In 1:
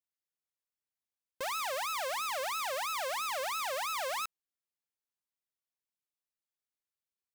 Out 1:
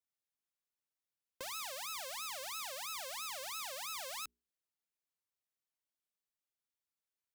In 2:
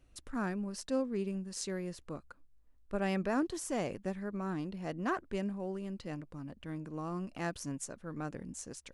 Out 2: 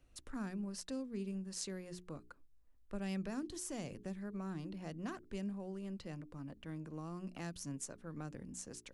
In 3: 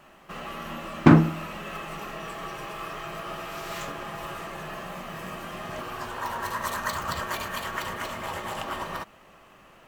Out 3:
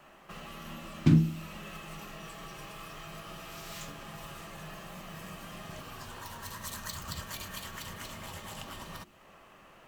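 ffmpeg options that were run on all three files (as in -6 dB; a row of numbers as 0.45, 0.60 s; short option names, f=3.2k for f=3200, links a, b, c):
-filter_complex "[0:a]bandreject=f=60:t=h:w=6,bandreject=f=120:t=h:w=6,bandreject=f=180:t=h:w=6,bandreject=f=240:t=h:w=6,bandreject=f=300:t=h:w=6,bandreject=f=360:t=h:w=6,bandreject=f=420:t=h:w=6,acrossover=split=250|3000[a][b][c];[b]acompressor=threshold=-45dB:ratio=4[d];[a][d][c]amix=inputs=3:normalize=0,volume=-2.5dB"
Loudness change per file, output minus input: -7.0, -6.5, -7.5 LU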